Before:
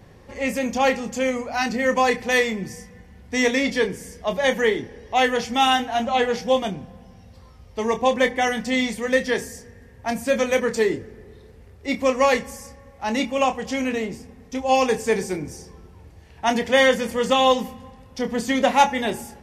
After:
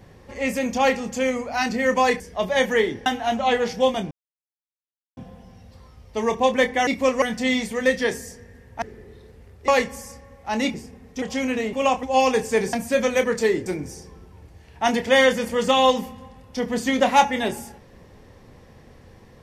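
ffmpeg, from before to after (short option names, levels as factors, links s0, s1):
-filter_complex "[0:a]asplit=14[s0][s1][s2][s3][s4][s5][s6][s7][s8][s9][s10][s11][s12][s13];[s0]atrim=end=2.202[s14];[s1]atrim=start=4.078:end=4.942[s15];[s2]atrim=start=5.738:end=6.79,asetpts=PTS-STARTPTS,afade=t=out:st=1.048:d=0.004:c=hsin,apad=pad_dur=1.06[s16];[s3]atrim=start=6.79:end=8.492,asetpts=PTS-STARTPTS,afade=t=in:d=0.004:c=hsin[s17];[s4]atrim=start=11.878:end=12.232[s18];[s5]atrim=start=8.488:end=10.092[s19];[s6]atrim=start=11.018:end=11.882[s20];[s7]atrim=start=12.228:end=13.292[s21];[s8]atrim=start=14.098:end=14.582[s22];[s9]atrim=start=13.588:end=14.102[s23];[s10]atrim=start=13.288:end=13.592[s24];[s11]atrim=start=14.578:end=15.282[s25];[s12]atrim=start=10.088:end=11.022[s26];[s13]atrim=start=15.278[s27];[s14][s15]acrossfade=d=0.004:c1=hsin:c2=hsin[s28];[s16][s17]concat=n=2:v=0:a=1[s29];[s28][s29]acrossfade=d=0.004:c1=hsin:c2=hsin[s30];[s30][s18]acrossfade=d=0.004:c1=hsin:c2=hsin[s31];[s31][s19]acrossfade=d=0.004:c1=hsin:c2=hsin[s32];[s32][s20]acrossfade=d=0.004:c1=hsin:c2=hsin[s33];[s33][s21]acrossfade=d=0.004:c1=hsin:c2=hsin[s34];[s34][s22]acrossfade=d=0.004:c1=hsin:c2=hsin[s35];[s35][s23]acrossfade=d=0.004:c1=hsin:c2=hsin[s36];[s36][s24]acrossfade=d=0.004:c1=hsin:c2=hsin[s37];[s37][s25]acrossfade=d=0.004:c1=hsin:c2=hsin[s38];[s38][s26]acrossfade=d=0.004:c1=hsin:c2=hsin[s39];[s39][s27]acrossfade=d=0.004:c1=hsin:c2=hsin"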